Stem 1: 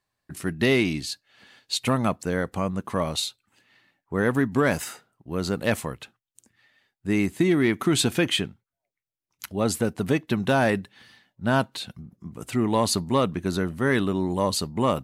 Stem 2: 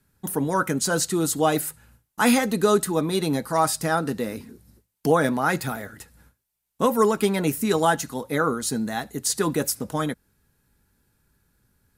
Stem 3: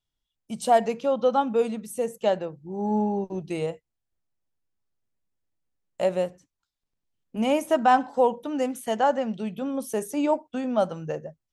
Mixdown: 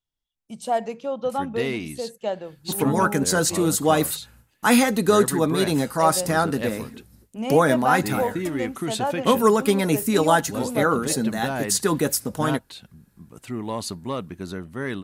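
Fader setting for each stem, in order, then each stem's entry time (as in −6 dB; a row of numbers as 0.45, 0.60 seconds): −7.0, +2.0, −4.0 decibels; 0.95, 2.45, 0.00 seconds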